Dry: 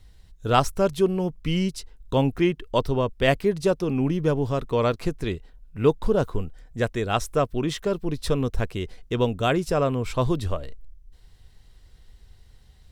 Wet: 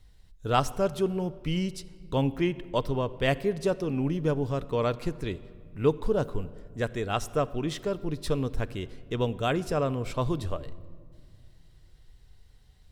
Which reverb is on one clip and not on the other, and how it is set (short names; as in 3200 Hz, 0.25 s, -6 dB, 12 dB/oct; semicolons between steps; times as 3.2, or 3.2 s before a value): shoebox room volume 4000 m³, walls mixed, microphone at 0.4 m; gain -5 dB